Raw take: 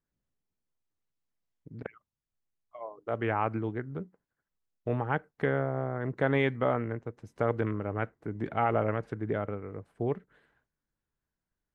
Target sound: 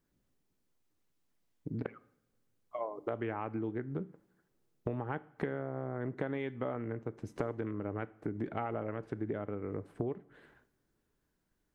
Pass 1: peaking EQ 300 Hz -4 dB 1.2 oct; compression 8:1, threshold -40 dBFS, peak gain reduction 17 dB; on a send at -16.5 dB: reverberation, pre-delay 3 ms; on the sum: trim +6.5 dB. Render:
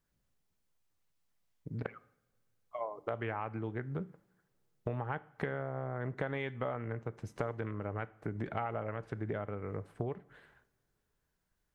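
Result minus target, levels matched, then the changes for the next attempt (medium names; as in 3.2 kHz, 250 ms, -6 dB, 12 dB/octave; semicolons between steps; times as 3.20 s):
250 Hz band -3.5 dB
change: peaking EQ 300 Hz +6 dB 1.2 oct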